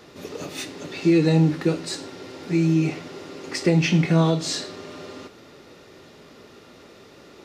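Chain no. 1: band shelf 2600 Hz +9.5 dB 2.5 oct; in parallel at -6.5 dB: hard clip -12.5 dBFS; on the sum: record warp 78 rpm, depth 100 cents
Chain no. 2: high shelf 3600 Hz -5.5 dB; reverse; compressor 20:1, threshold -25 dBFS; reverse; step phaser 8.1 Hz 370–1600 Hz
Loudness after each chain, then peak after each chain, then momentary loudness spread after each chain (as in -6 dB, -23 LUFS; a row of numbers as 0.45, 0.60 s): -17.0, -36.5 LUFS; -2.5, -22.0 dBFS; 17, 19 LU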